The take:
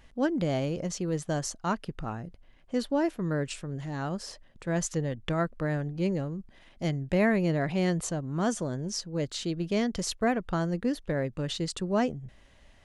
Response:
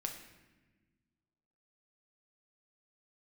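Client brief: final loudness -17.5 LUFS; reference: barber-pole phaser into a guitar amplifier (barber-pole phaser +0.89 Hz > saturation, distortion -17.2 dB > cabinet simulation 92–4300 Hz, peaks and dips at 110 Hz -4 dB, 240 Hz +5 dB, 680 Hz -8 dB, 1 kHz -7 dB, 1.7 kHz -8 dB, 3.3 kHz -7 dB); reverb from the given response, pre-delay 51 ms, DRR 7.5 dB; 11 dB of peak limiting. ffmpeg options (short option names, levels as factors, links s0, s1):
-filter_complex "[0:a]alimiter=level_in=1.33:limit=0.0631:level=0:latency=1,volume=0.75,asplit=2[s0][s1];[1:a]atrim=start_sample=2205,adelay=51[s2];[s1][s2]afir=irnorm=-1:irlink=0,volume=0.447[s3];[s0][s3]amix=inputs=2:normalize=0,asplit=2[s4][s5];[s5]afreqshift=0.89[s6];[s4][s6]amix=inputs=2:normalize=1,asoftclip=threshold=0.0299,highpass=92,equalizer=f=110:t=q:w=4:g=-4,equalizer=f=240:t=q:w=4:g=5,equalizer=f=680:t=q:w=4:g=-8,equalizer=f=1000:t=q:w=4:g=-7,equalizer=f=1700:t=q:w=4:g=-8,equalizer=f=3300:t=q:w=4:g=-7,lowpass=f=4300:w=0.5412,lowpass=f=4300:w=1.3066,volume=12.6"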